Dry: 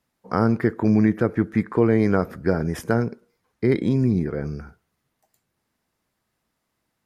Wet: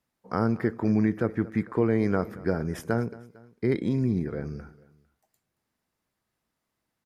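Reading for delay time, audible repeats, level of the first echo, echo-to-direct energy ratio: 226 ms, 2, -20.0 dB, -19.0 dB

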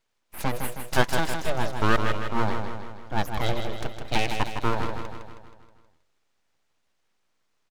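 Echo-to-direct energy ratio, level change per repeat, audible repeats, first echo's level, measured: -5.0 dB, -5.5 dB, 6, -6.5 dB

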